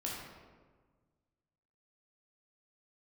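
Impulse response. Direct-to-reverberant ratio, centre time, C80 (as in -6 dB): -4.5 dB, 80 ms, 2.5 dB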